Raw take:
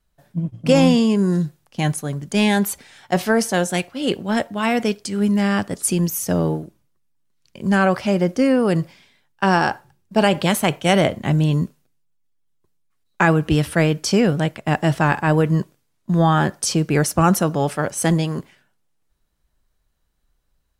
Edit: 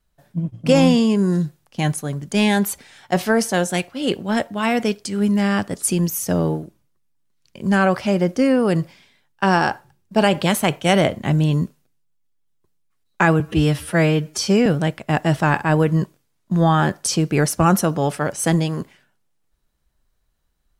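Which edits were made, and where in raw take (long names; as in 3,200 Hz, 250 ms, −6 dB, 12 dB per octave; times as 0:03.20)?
0:13.40–0:14.24: time-stretch 1.5×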